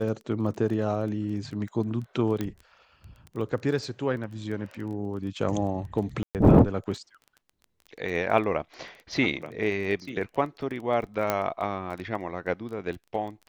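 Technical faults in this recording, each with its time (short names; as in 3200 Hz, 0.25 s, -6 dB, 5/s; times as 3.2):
crackle 14/s -35 dBFS
2.41 pop -16 dBFS
6.23–6.35 gap 0.118 s
11.3 pop -10 dBFS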